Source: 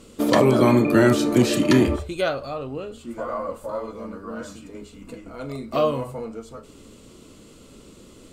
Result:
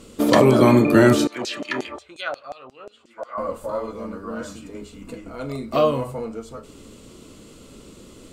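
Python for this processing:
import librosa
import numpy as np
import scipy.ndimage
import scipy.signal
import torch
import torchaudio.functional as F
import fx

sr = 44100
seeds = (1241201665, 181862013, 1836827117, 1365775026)

y = fx.filter_lfo_bandpass(x, sr, shape='saw_down', hz=5.6, low_hz=600.0, high_hz=6600.0, q=2.0, at=(1.27, 3.38))
y = y * 10.0 ** (2.5 / 20.0)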